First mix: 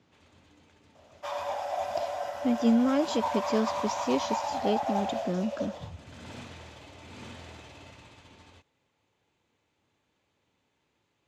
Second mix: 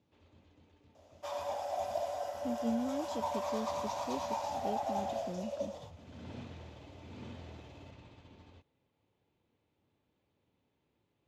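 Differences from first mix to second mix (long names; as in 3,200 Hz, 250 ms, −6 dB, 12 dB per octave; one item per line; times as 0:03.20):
speech −10.5 dB
first sound: add low-pass filter 3,400 Hz 12 dB per octave
master: add parametric band 1,700 Hz −9.5 dB 2.4 octaves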